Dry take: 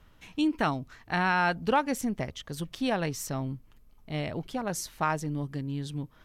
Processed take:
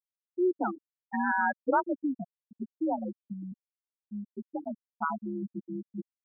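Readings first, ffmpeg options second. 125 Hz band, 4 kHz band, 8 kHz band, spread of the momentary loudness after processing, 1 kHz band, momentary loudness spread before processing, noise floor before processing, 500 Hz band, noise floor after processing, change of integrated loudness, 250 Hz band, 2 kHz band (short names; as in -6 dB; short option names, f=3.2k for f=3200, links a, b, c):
-13.5 dB, under -40 dB, under -40 dB, 16 LU, -2.0 dB, 12 LU, -58 dBFS, -1.0 dB, under -85 dBFS, -2.0 dB, -2.0 dB, -3.0 dB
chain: -af "afreqshift=56,afftfilt=real='re*gte(hypot(re,im),0.2)':imag='im*gte(hypot(re,im),0.2)':win_size=1024:overlap=0.75"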